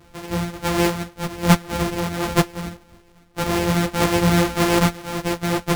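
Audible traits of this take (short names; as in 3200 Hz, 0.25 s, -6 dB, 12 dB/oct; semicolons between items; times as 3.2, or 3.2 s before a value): a buzz of ramps at a fixed pitch in blocks of 256 samples; random-step tremolo; a shimmering, thickened sound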